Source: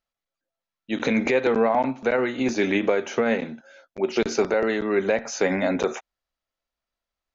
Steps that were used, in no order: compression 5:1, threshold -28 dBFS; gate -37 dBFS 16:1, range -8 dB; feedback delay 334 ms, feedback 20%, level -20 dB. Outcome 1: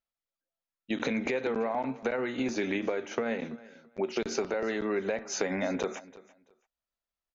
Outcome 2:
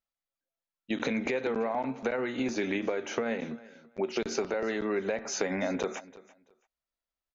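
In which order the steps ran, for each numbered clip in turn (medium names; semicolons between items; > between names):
compression > gate > feedback delay; gate > compression > feedback delay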